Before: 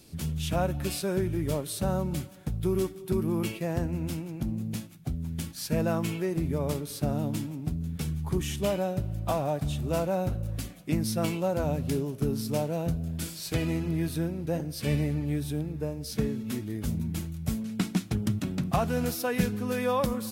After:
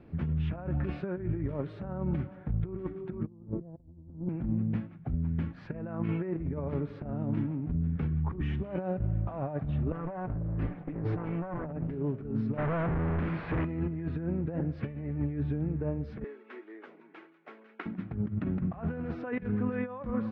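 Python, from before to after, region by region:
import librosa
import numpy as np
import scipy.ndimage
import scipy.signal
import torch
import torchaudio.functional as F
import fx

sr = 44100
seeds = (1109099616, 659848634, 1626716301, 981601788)

y = fx.chain(x, sr, fx.lowpass(hz=1100.0, slope=24),
    fx.tilt_eq(slope=-4.0), at=(3.27, 4.29))
y = fx.chain(y, sr, fx.lower_of_two(delay_ms=6.7),
    fx.lowpass(hz=2600.0, slope=6),
    fx.over_compress(threshold_db=-37.0, ratio=-1.0), at=(9.92, 11.91))
y = fx.chain(y, sr, fx.clip_1bit(),
    fx.lowpass(hz=3200.0, slope=12), at=(12.57, 13.65))
y = fx.chain(y, sr, fx.ellip_highpass(hz=370.0, order=4, stop_db=80),
    fx.peak_eq(hz=550.0, db=-9.5, octaves=2.0), at=(16.24, 17.86))
y = fx.over_compress(y, sr, threshold_db=-31.0, ratio=-0.5)
y = scipy.signal.sosfilt(scipy.signal.butter(4, 1900.0, 'lowpass', fs=sr, output='sos'), y)
y = fx.dynamic_eq(y, sr, hz=700.0, q=0.99, threshold_db=-43.0, ratio=4.0, max_db=-3)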